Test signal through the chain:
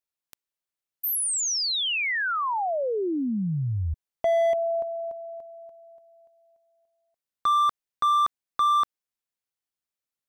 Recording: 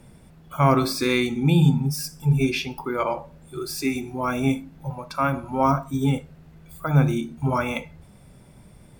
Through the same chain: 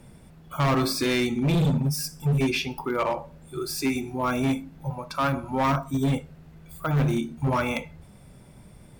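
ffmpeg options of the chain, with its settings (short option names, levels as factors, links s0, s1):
-af "asoftclip=type=hard:threshold=0.112"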